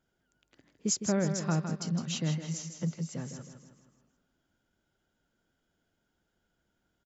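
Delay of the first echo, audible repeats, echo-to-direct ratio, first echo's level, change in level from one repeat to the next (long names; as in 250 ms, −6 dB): 159 ms, 5, −7.0 dB, −8.0 dB, −6.5 dB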